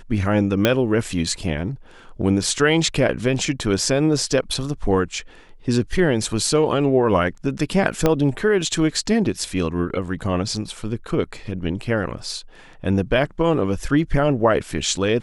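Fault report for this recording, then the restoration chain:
0:00.65: click −2 dBFS
0:08.06: click −4 dBFS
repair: click removal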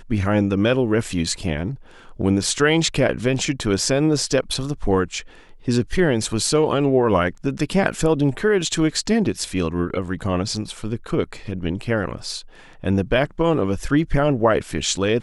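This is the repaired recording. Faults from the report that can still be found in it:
0:00.65: click
0:08.06: click

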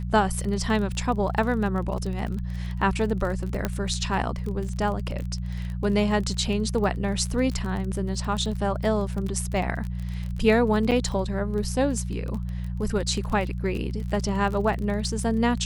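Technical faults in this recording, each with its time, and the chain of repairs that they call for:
surface crackle 26 per second −30 dBFS
mains hum 60 Hz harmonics 3 −30 dBFS
0:03.65: click −11 dBFS
0:10.91–0:10.92: drop-out 7.1 ms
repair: click removal
hum removal 60 Hz, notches 3
repair the gap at 0:10.91, 7.1 ms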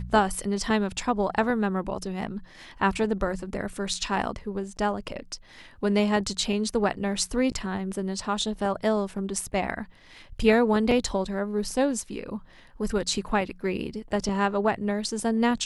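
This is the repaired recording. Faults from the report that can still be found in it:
none of them is left

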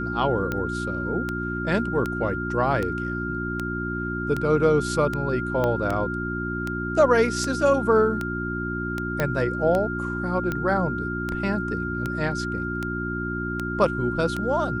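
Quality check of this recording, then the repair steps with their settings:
mains hum 60 Hz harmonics 6 −30 dBFS
scratch tick 78 rpm −14 dBFS
whistle 1,400 Hz −30 dBFS
0:05.64: click −13 dBFS
0:09.20: click −10 dBFS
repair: click removal
notch filter 1,400 Hz, Q 30
hum removal 60 Hz, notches 6

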